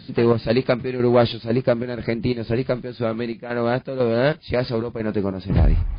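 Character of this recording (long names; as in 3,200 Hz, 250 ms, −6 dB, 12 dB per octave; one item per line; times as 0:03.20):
chopped level 2 Hz, depth 60%, duty 65%
MP3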